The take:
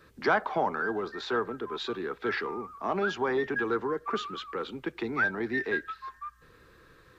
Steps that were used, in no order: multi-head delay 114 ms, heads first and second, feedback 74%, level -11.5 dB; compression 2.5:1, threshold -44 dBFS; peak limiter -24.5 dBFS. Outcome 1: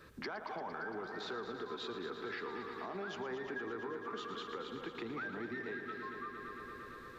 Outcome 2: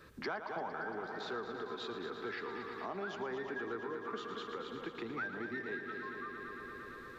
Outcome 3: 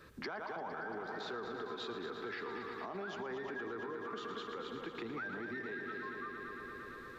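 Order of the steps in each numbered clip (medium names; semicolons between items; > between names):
peak limiter > multi-head delay > compression; multi-head delay > compression > peak limiter; multi-head delay > peak limiter > compression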